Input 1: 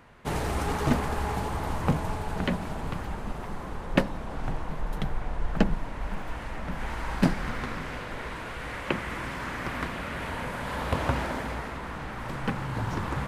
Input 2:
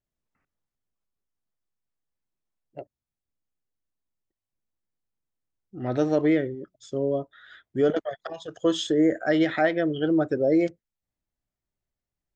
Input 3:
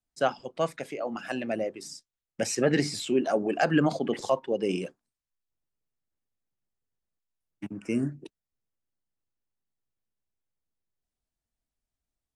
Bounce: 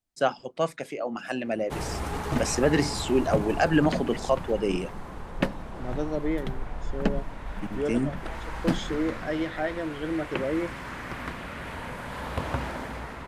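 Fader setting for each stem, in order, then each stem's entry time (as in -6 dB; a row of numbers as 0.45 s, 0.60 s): -3.0 dB, -7.5 dB, +1.5 dB; 1.45 s, 0.00 s, 0.00 s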